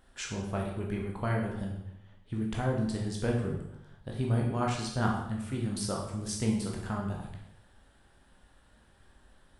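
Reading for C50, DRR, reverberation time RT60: 4.0 dB, -1.0 dB, 0.80 s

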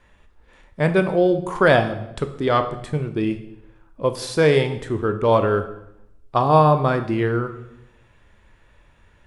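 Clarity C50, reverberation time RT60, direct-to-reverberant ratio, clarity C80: 11.0 dB, 0.85 s, 8.0 dB, 13.5 dB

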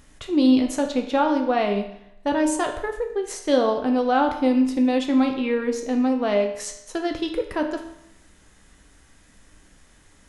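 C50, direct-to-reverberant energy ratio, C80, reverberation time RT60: 8.0 dB, 3.5 dB, 10.5 dB, 0.80 s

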